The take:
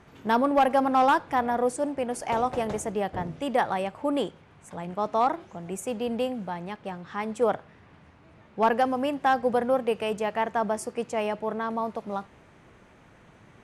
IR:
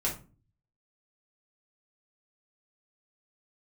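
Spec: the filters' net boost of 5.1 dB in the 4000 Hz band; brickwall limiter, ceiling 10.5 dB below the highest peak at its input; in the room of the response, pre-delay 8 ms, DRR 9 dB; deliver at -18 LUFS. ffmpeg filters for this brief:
-filter_complex "[0:a]equalizer=f=4k:t=o:g=7.5,alimiter=limit=-21.5dB:level=0:latency=1,asplit=2[a][b];[1:a]atrim=start_sample=2205,adelay=8[c];[b][c]afir=irnorm=-1:irlink=0,volume=-15dB[d];[a][d]amix=inputs=2:normalize=0,volume=13dB"

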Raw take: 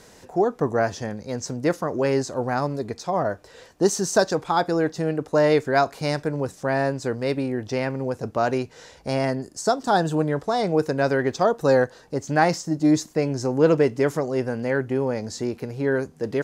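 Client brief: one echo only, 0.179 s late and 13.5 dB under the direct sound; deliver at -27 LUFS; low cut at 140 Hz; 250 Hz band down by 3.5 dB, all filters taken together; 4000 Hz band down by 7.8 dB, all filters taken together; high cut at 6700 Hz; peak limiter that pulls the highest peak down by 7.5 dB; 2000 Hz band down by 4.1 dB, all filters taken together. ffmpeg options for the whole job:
-af "highpass=140,lowpass=6.7k,equalizer=f=250:t=o:g=-4,equalizer=f=2k:t=o:g=-4,equalizer=f=4k:t=o:g=-8.5,alimiter=limit=-13.5dB:level=0:latency=1,aecho=1:1:179:0.211,volume=-0.5dB"

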